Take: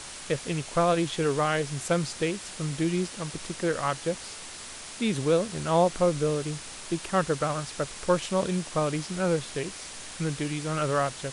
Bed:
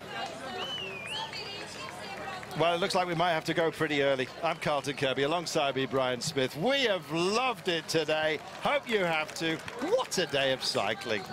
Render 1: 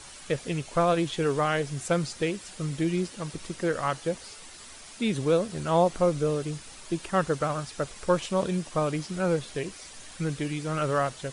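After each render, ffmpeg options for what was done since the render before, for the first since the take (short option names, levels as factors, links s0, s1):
-af "afftdn=nr=8:nf=-42"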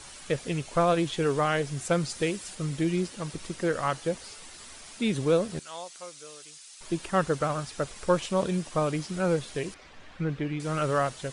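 -filter_complex "[0:a]asettb=1/sr,asplit=3[s0][s1][s2];[s0]atrim=end=2.094[s3];[s1]atrim=start=2.09:end=2.55,asetpts=PTS-STARTPTS,afade=t=in:d=0.004:c=qsin,afade=t=out:st=0.456:d=0.004:c=qsin,highshelf=f=7100:g=7[s4];[s2]atrim=start=2.546[s5];[s3][s4]acrossfade=d=0.004:c1=hsin:c2=qsin[s6];[s6][s5]acrossfade=d=0.004:c1=qsin:c2=hsin,asettb=1/sr,asplit=3[s7][s8][s9];[s7]atrim=end=5.594[s10];[s8]atrim=start=5.59:end=6.81,asetpts=PTS-STARTPTS,afade=t=in:d=0.004:c=qsin,afade=t=out:st=1.216:d=0.004:c=qsin,bandpass=f=6800:t=q:w=0.74[s11];[s9]atrim=start=6.806[s12];[s10][s11]acrossfade=d=0.004:c1=hsin:c2=qsin[s13];[s13][s12]acrossfade=d=0.004:c1=qsin:c2=hsin,asettb=1/sr,asplit=3[s14][s15][s16];[s14]atrim=end=9.744[s17];[s15]atrim=start=9.74:end=10.6,asetpts=PTS-STARTPTS,afade=t=in:d=0.004:c=qsin,afade=t=out:st=0.856:d=0.004:c=qsin,lowpass=2500[s18];[s16]atrim=start=10.596[s19];[s17][s18]acrossfade=d=0.004:c1=hsin:c2=qsin[s20];[s20][s19]acrossfade=d=0.004:c1=qsin:c2=hsin"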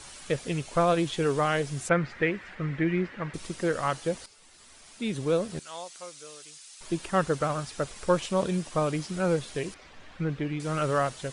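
-filter_complex "[0:a]asettb=1/sr,asplit=3[s0][s1][s2];[s0]atrim=end=1.894[s3];[s1]atrim=start=1.89:end=3.34,asetpts=PTS-STARTPTS,afade=t=in:d=0.004:c=qsin,afade=t=out:st=1.446:d=0.004:c=qsin,lowpass=f=1900:t=q:w=3.2[s4];[s2]atrim=start=3.336[s5];[s3][s4]acrossfade=d=0.004:c1=hsin:c2=qsin[s6];[s6][s5]acrossfade=d=0.004:c1=qsin:c2=hsin,asplit=2[s7][s8];[s7]atrim=end=4.26,asetpts=PTS-STARTPTS,afade=t=out:st=4.256:d=0.004:c=hsin:silence=0.211349[s9];[s8]atrim=start=4.26,asetpts=PTS-STARTPTS,afade=t=in:d=1.51:silence=0.211349[s10];[s9][s10]concat=n=2:v=0:a=1"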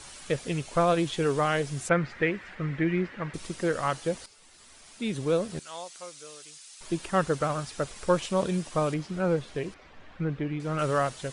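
-filter_complex "[0:a]asettb=1/sr,asplit=3[s0][s1][s2];[s0]atrim=end=8.944[s3];[s1]atrim=start=8.94:end=10.79,asetpts=PTS-STARTPTS,afade=t=in:d=0.004:c=qsin,afade=t=out:st=1.846:d=0.004:c=qsin,lowpass=f=2400:p=1[s4];[s2]atrim=start=10.786[s5];[s3][s4]acrossfade=d=0.004:c1=hsin:c2=qsin[s6];[s6][s5]acrossfade=d=0.004:c1=qsin:c2=hsin"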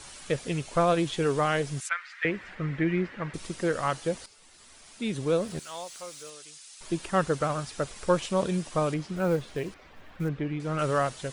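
-filter_complex "[0:a]asettb=1/sr,asplit=3[s0][s1][s2];[s0]atrim=end=1.804[s3];[s1]atrim=start=1.8:end=2.25,asetpts=PTS-STARTPTS,afade=t=in:d=0.004:c=qsin,afade=t=out:st=0.446:d=0.004:c=qsin,highpass=f=1300:w=0.5412,highpass=f=1300:w=1.3066[s4];[s2]atrim=start=2.246[s5];[s3][s4]acrossfade=d=0.004:c1=hsin:c2=qsin[s6];[s6][s5]acrossfade=d=0.004:c1=qsin:c2=hsin,asettb=1/sr,asplit=3[s7][s8][s9];[s7]atrim=end=5.414[s10];[s8]atrim=start=5.41:end=6.3,asetpts=PTS-STARTPTS,afade=t=in:d=0.004:c=qsin,afade=t=out:st=0.886:d=0.004:c=qsin,aeval=exprs='val(0)+0.5*0.00355*sgn(val(0))':c=same[s11];[s9]atrim=start=6.296[s12];[s10][s11]acrossfade=d=0.004:c1=hsin:c2=qsin[s13];[s13][s12]acrossfade=d=0.004:c1=qsin:c2=hsin,asettb=1/sr,asplit=3[s14][s15][s16];[s14]atrim=end=9.164[s17];[s15]atrim=start=9.16:end=10.29,asetpts=PTS-STARTPTS,afade=t=in:d=0.004:c=qsin,afade=t=out:st=1.126:d=0.004:c=qsin,acrusher=bits=7:mode=log:mix=0:aa=0.000001[s18];[s16]atrim=start=10.286[s19];[s17][s18]acrossfade=d=0.004:c1=hsin:c2=qsin[s20];[s20][s19]acrossfade=d=0.004:c1=qsin:c2=hsin"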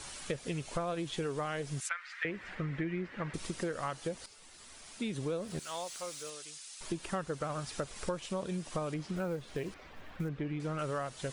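-af "acompressor=threshold=0.0224:ratio=6"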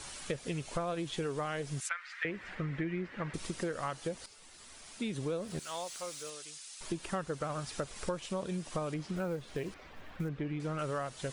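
-af anull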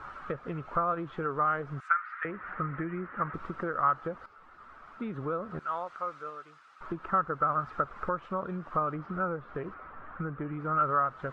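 -af "lowpass=f=1300:t=q:w=7.1"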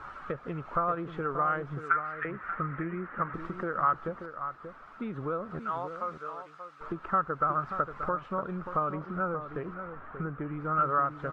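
-filter_complex "[0:a]asplit=2[s0][s1];[s1]adelay=583.1,volume=0.355,highshelf=f=4000:g=-13.1[s2];[s0][s2]amix=inputs=2:normalize=0"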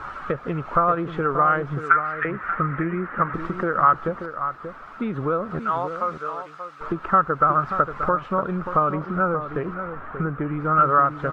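-af "volume=2.99"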